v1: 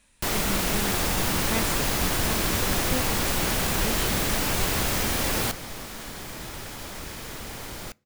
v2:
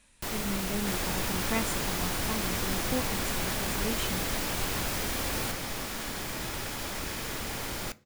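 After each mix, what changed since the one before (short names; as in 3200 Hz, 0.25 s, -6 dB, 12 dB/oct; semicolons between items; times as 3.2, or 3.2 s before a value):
first sound -8.0 dB; second sound: send +10.0 dB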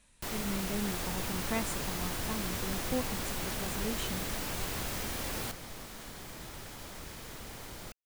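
first sound -3.0 dB; second sound -7.0 dB; reverb: off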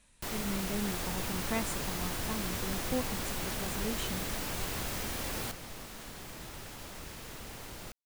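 second sound: remove notch 2700 Hz, Q 24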